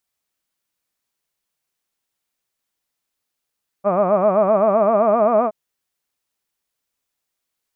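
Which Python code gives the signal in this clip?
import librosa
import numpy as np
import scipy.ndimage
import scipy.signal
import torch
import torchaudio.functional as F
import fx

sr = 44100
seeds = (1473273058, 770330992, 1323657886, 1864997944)

y = fx.vowel(sr, seeds[0], length_s=1.67, word='hud', hz=188.0, glide_st=3.5, vibrato_hz=7.7, vibrato_st=1.5)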